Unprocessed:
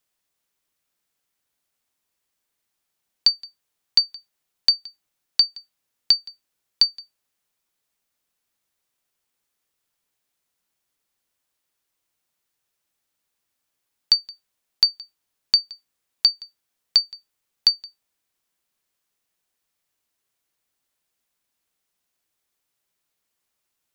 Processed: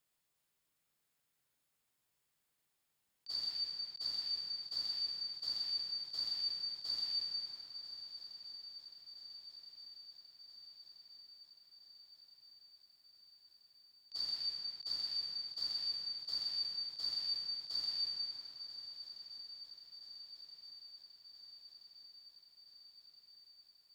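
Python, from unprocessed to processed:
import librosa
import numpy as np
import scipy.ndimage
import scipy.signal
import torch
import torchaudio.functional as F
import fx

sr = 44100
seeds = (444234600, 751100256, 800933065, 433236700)

y = fx.rev_plate(x, sr, seeds[0], rt60_s=3.8, hf_ratio=0.6, predelay_ms=0, drr_db=5.5)
y = fx.dynamic_eq(y, sr, hz=2600.0, q=1.3, threshold_db=-35.0, ratio=4.0, max_db=-7)
y = fx.over_compress(y, sr, threshold_db=-27.0, ratio=-0.5)
y = fx.peak_eq(y, sr, hz=140.0, db=6.5, octaves=0.66)
y = fx.notch(y, sr, hz=5900.0, q=11.0)
y = fx.echo_swing(y, sr, ms=1325, ratio=3, feedback_pct=65, wet_db=-14.5)
y = F.gain(torch.from_numpy(y), -9.0).numpy()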